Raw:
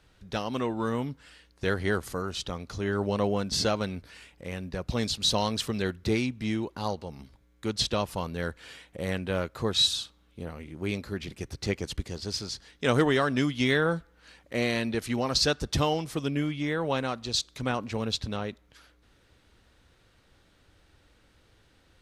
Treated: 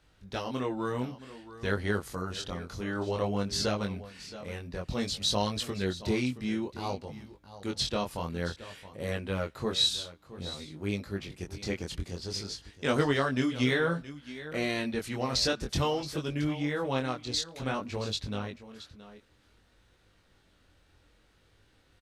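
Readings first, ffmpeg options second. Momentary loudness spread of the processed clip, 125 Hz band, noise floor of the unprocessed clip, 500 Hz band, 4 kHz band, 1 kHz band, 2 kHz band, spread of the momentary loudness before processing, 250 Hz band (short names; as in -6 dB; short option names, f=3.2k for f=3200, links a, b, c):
14 LU, -2.5 dB, -63 dBFS, -3.0 dB, -3.0 dB, -3.0 dB, -2.5 dB, 13 LU, -2.5 dB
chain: -filter_complex "[0:a]asplit=2[a][b];[b]aecho=0:1:673:0.178[c];[a][c]amix=inputs=2:normalize=0,flanger=delay=19.5:depth=4.5:speed=0.55"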